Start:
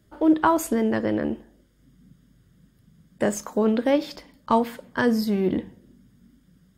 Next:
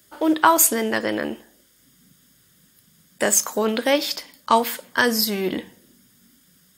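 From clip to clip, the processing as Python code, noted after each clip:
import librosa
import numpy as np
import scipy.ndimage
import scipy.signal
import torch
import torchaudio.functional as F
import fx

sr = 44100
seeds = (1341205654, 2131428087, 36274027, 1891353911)

y = fx.tilt_eq(x, sr, slope=4.0)
y = y * librosa.db_to_amplitude(5.0)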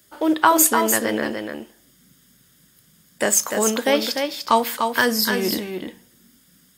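y = x + 10.0 ** (-5.5 / 20.0) * np.pad(x, (int(297 * sr / 1000.0), 0))[:len(x)]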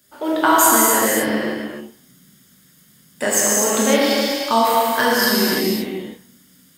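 y = fx.rev_gated(x, sr, seeds[0], gate_ms=290, shape='flat', drr_db=-6.0)
y = y * librosa.db_to_amplitude(-3.5)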